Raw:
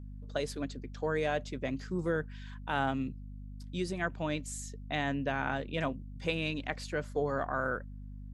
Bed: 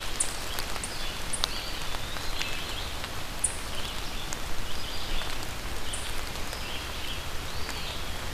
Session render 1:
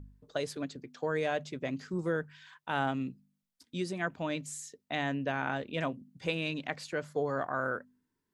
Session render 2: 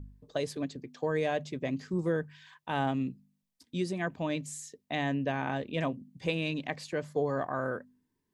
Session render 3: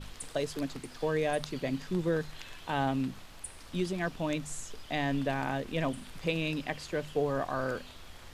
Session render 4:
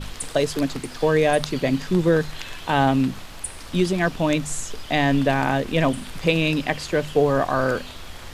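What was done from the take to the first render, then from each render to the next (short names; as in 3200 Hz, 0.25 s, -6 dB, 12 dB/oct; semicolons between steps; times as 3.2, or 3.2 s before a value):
de-hum 50 Hz, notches 5
low shelf 460 Hz +4 dB; notch 1400 Hz, Q 5.9
add bed -15.5 dB
gain +11.5 dB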